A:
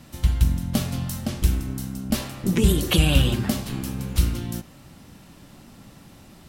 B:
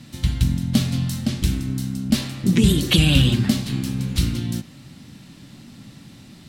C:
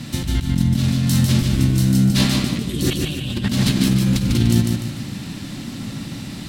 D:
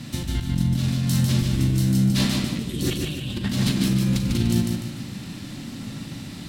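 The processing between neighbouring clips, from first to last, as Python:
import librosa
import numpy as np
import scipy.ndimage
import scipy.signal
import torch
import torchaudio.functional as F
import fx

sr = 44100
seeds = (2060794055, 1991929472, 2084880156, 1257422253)

y1 = fx.graphic_eq(x, sr, hz=(125, 250, 2000, 4000, 8000), db=(10, 9, 6, 10, 5))
y1 = y1 * 10.0 ** (-5.0 / 20.0)
y2 = fx.over_compress(y1, sr, threshold_db=-27.0, ratio=-1.0)
y2 = fx.echo_feedback(y2, sr, ms=148, feedback_pct=41, wet_db=-4.0)
y2 = y2 * 10.0 ** (6.0 / 20.0)
y3 = fx.doubler(y2, sr, ms=40.0, db=-10.5)
y3 = y3 * 10.0 ** (-5.0 / 20.0)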